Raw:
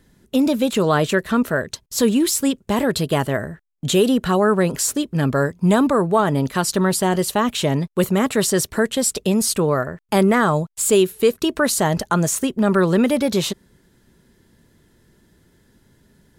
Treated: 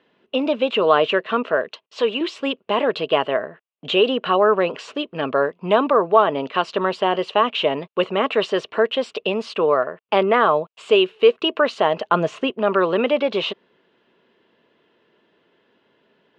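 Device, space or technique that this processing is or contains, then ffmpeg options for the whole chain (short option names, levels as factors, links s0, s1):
phone earpiece: -filter_complex "[0:a]highshelf=f=5500:g=4.5,asettb=1/sr,asplit=3[s0][s1][s2];[s0]atrim=end=1.684[s3];[s1]atrim=start=1.68:end=2.21,asetpts=PTS-STARTPTS,afade=t=in:d=0.004:c=qsin,afade=t=out:st=0.526:d=0.004:c=qsin,highpass=f=410:p=1[s4];[s2]atrim=start=2.206[s5];[s3][s4]acrossfade=d=0.004:c1=hsin:c2=qsin[s6];[s6][s5]acrossfade=d=0.004:c1=qsin:c2=hsin,highpass=370,equalizer=f=460:t=q:w=4:g=5,equalizer=f=650:t=q:w=4:g=5,equalizer=f=1100:t=q:w=4:g=6,equalizer=f=1800:t=q:w=4:g=-3,equalizer=f=2800:t=q:w=4:g=10,lowpass=f=3300:w=0.5412,lowpass=f=3300:w=1.3066,asettb=1/sr,asplit=3[s7][s8][s9];[s7]atrim=end=12.104[s10];[s8]atrim=start=12.1:end=12.5,asetpts=PTS-STARTPTS,afade=t=in:d=0.004:c=qsin,afade=t=out:st=0.396:d=0.004:c=qsin,lowshelf=f=220:g=11[s11];[s9]atrim=start=12.496[s12];[s10][s11]acrossfade=d=0.004:c1=hsin:c2=qsin[s13];[s13][s12]acrossfade=d=0.004:c1=qsin:c2=hsin,volume=0.891"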